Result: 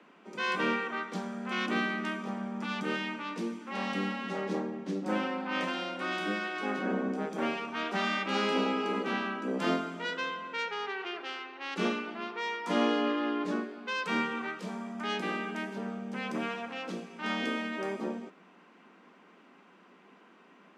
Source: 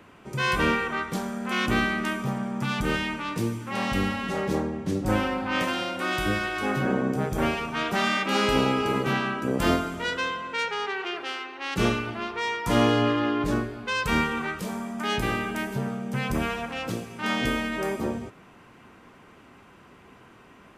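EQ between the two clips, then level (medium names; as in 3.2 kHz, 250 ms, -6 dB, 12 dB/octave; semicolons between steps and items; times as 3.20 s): steep high-pass 170 Hz 96 dB/octave; low-pass 5.6 kHz 12 dB/octave; -6.0 dB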